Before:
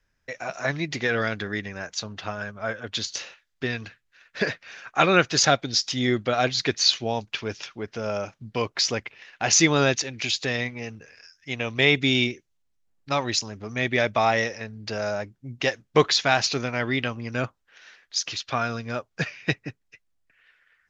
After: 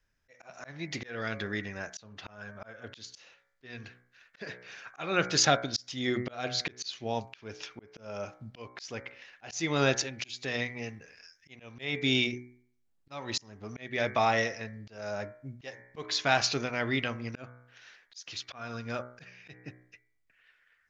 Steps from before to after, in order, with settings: de-hum 61.58 Hz, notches 38; auto swell 0.349 s; gain -4 dB

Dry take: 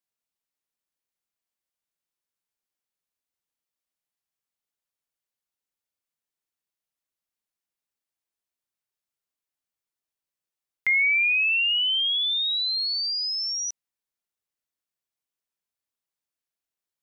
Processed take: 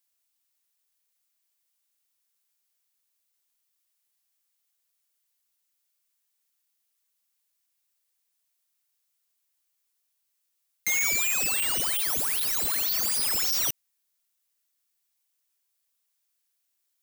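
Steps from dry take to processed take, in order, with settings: tilt +3 dB/oct; wrapped overs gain 23.5 dB; gain +3 dB

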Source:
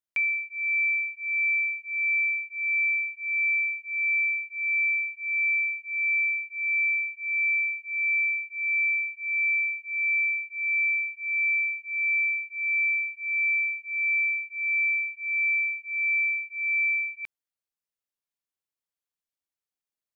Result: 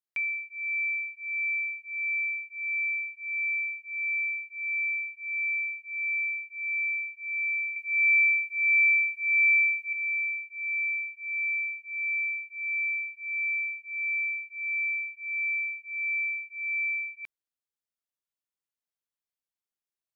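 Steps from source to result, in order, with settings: 7.76–9.93 EQ curve 1400 Hz 0 dB, 2000 Hz +5 dB, 2900 Hz +12 dB; gain -4.5 dB

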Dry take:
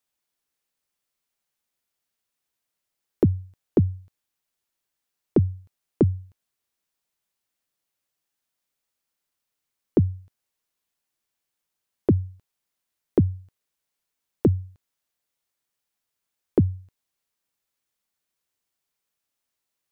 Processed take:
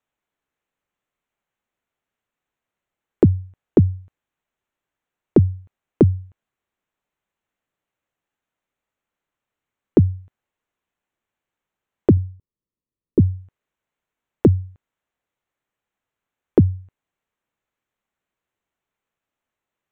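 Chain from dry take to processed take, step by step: Wiener smoothing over 9 samples; 12.17–13.2 running mean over 58 samples; gain +5.5 dB

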